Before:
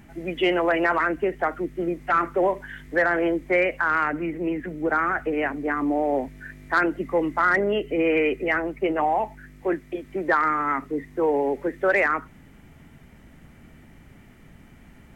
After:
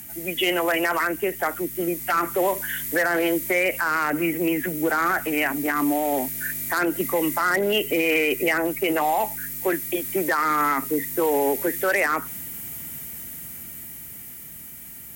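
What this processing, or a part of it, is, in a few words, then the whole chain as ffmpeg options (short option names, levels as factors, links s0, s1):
FM broadcast chain: -filter_complex "[0:a]highpass=55,dynaudnorm=f=260:g=17:m=2.11,acrossover=split=120|1100[s0][s1][s2];[s0]acompressor=threshold=0.00355:ratio=4[s3];[s1]acompressor=threshold=0.141:ratio=4[s4];[s2]acompressor=threshold=0.0708:ratio=4[s5];[s3][s4][s5]amix=inputs=3:normalize=0,aemphasis=mode=production:type=75fm,alimiter=limit=0.211:level=0:latency=1:release=32,asoftclip=type=hard:threshold=0.178,lowpass=f=15000:w=0.5412,lowpass=f=15000:w=1.3066,aemphasis=mode=production:type=75fm,asettb=1/sr,asplit=3[s6][s7][s8];[s6]atrim=end=5.264[s9];[s7]atrim=start=5.26:end=6.28,asetpts=PTS-STARTPTS,afade=t=in:d=0.004:c=qsin,afade=t=out:st=1.016:d=0.004:c=qsin,equalizer=f=490:t=o:w=0.29:g=-9.5[s10];[s8]atrim=start=6.276[s11];[s9][s10]acrossfade=d=0.004:c1=hsin:c2=qsin[s12];[s12][s11]acrossfade=d=0.004:c1=qsin:c2=hsin"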